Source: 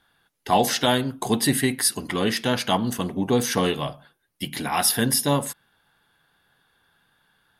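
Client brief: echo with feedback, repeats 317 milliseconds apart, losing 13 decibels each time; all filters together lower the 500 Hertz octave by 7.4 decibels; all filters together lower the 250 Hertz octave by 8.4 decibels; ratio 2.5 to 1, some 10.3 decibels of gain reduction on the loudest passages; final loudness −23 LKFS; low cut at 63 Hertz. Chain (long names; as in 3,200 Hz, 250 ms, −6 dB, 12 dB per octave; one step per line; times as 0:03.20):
high-pass filter 63 Hz
parametric band 250 Hz −8.5 dB
parametric band 500 Hz −7 dB
downward compressor 2.5 to 1, threshold −33 dBFS
repeating echo 317 ms, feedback 22%, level −13 dB
level +10 dB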